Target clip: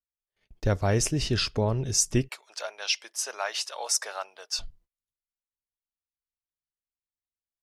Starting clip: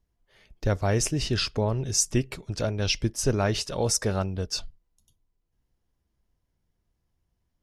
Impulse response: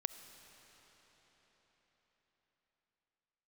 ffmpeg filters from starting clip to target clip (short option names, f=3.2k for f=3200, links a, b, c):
-filter_complex "[0:a]agate=range=-34dB:threshold=-55dB:ratio=16:detection=peak,asplit=3[a][b][c];[a]afade=t=out:st=2.27:d=0.02[d];[b]highpass=f=720:w=0.5412,highpass=f=720:w=1.3066,afade=t=in:st=2.27:d=0.02,afade=t=out:st=4.58:d=0.02[e];[c]afade=t=in:st=4.58:d=0.02[f];[d][e][f]amix=inputs=3:normalize=0"